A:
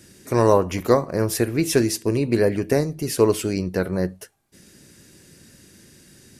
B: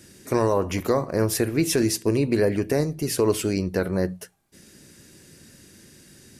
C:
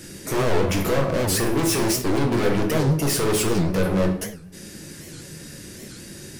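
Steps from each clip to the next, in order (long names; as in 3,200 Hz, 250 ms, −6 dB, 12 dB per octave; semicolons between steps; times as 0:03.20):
mains-hum notches 60/120/180 Hz; brickwall limiter −11 dBFS, peak gain reduction 7.5 dB
gain into a clipping stage and back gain 31 dB; rectangular room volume 120 cubic metres, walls mixed, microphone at 0.66 metres; wow of a warped record 78 rpm, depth 250 cents; level +8.5 dB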